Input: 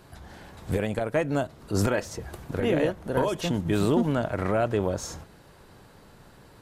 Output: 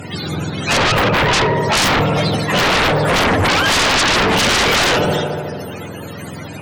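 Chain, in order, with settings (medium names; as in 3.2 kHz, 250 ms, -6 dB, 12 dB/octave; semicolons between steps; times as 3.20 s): spectrum inverted on a logarithmic axis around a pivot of 520 Hz; 0.46–0.98 s: low-pass 9.1 kHz 12 dB/octave; 4.36–4.90 s: treble shelf 3.2 kHz +9.5 dB; on a send: filtered feedback delay 73 ms, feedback 81%, low-pass 3.4 kHz, level -13.5 dB; on the sum: sine folder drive 18 dB, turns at -13.5 dBFS; trim +2.5 dB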